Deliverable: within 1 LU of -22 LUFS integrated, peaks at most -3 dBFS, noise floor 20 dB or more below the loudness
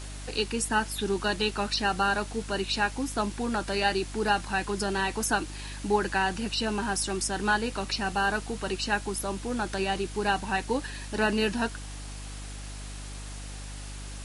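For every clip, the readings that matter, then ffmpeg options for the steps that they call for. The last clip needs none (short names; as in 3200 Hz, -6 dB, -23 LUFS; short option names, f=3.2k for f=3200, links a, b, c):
hum 50 Hz; harmonics up to 300 Hz; hum level -38 dBFS; noise floor -39 dBFS; noise floor target -49 dBFS; loudness -28.5 LUFS; peak -11.0 dBFS; loudness target -22.0 LUFS
-> -af "bandreject=f=50:t=h:w=4,bandreject=f=100:t=h:w=4,bandreject=f=150:t=h:w=4,bandreject=f=200:t=h:w=4,bandreject=f=250:t=h:w=4,bandreject=f=300:t=h:w=4"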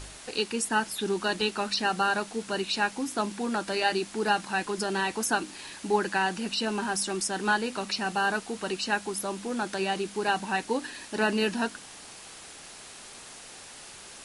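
hum none; noise floor -46 dBFS; noise floor target -49 dBFS
-> -af "afftdn=nr=6:nf=-46"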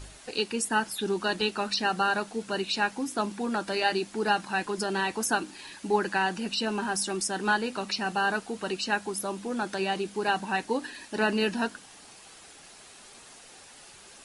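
noise floor -51 dBFS; loudness -29.0 LUFS; peak -11.5 dBFS; loudness target -22.0 LUFS
-> -af "volume=7dB"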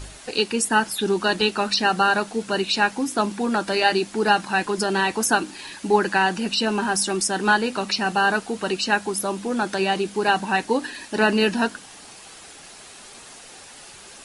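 loudness -22.0 LUFS; peak -4.5 dBFS; noise floor -44 dBFS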